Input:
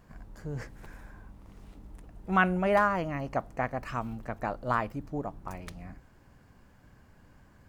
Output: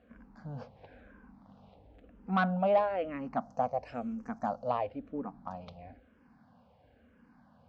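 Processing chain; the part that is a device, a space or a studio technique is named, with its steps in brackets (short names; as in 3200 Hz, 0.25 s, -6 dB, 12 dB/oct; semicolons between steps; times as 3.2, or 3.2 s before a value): 3.41–4.7 resonant high shelf 4700 Hz +10.5 dB, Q 3; barber-pole phaser into a guitar amplifier (endless phaser -1 Hz; soft clip -19.5 dBFS, distortion -15 dB; speaker cabinet 77–4200 Hz, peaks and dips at 120 Hz -7 dB, 240 Hz +10 dB, 350 Hz -9 dB, 510 Hz +8 dB, 740 Hz +7 dB, 1900 Hz -5 dB); gain -2 dB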